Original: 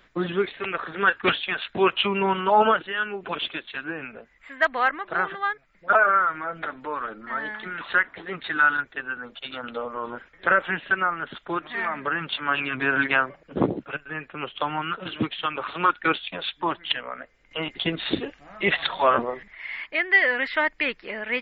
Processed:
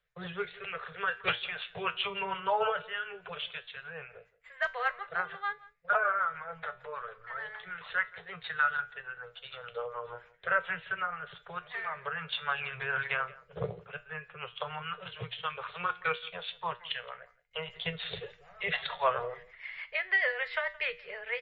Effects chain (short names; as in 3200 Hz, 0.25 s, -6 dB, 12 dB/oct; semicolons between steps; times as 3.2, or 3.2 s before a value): elliptic band-stop 170–430 Hz; gate -51 dBFS, range -14 dB; rotary speaker horn 6.7 Hz; resonator 120 Hz, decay 0.28 s, harmonics all, mix 60%; on a send: echo 0.171 s -21.5 dB